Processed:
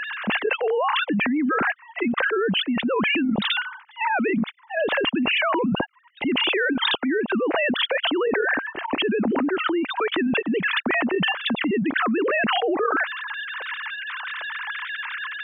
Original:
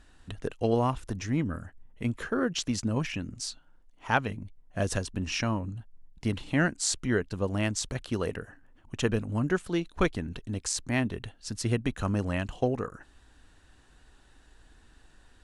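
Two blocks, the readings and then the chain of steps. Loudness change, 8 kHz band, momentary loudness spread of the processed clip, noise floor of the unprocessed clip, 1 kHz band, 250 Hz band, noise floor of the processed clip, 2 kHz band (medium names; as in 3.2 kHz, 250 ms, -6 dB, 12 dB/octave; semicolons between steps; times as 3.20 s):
+7.5 dB, under -40 dB, 9 LU, -59 dBFS, +10.5 dB, +7.5 dB, -49 dBFS, +13.5 dB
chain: formants replaced by sine waves; level flattener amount 100%; trim -3 dB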